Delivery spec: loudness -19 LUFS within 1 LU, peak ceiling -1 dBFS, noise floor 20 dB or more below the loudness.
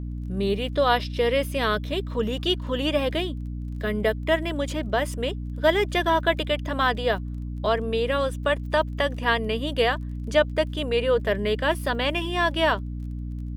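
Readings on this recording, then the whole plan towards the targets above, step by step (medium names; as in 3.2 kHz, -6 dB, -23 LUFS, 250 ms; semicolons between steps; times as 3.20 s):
tick rate 22 per s; hum 60 Hz; highest harmonic 300 Hz; hum level -29 dBFS; loudness -25.0 LUFS; peak level -7.5 dBFS; loudness target -19.0 LUFS
-> de-click; hum notches 60/120/180/240/300 Hz; trim +6 dB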